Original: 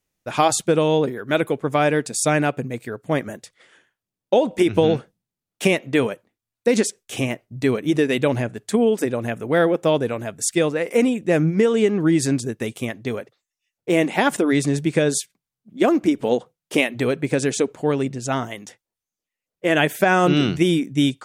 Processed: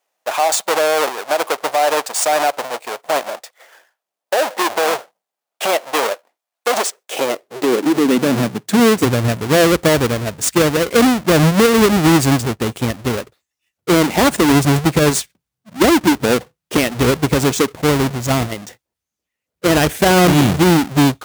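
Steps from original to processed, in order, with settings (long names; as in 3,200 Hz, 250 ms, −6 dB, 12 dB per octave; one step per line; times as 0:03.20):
each half-wave held at its own peak
high-pass filter sweep 680 Hz → 60 Hz, 0:06.94–0:09.71
brickwall limiter −8 dBFS, peak gain reduction 11 dB
level +2 dB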